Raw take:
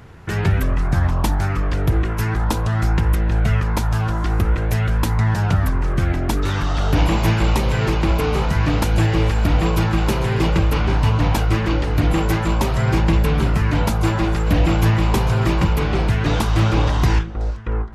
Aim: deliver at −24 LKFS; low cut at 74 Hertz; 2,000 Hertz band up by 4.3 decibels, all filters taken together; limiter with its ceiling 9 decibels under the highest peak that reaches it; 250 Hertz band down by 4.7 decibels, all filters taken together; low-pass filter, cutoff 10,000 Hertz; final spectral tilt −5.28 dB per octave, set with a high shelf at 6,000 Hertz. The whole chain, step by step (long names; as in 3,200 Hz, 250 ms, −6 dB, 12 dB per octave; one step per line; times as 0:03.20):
high-pass filter 74 Hz
low-pass filter 10,000 Hz
parametric band 250 Hz −7.5 dB
parametric band 2,000 Hz +5 dB
high-shelf EQ 6,000 Hz +5.5 dB
level −0.5 dB
brickwall limiter −14.5 dBFS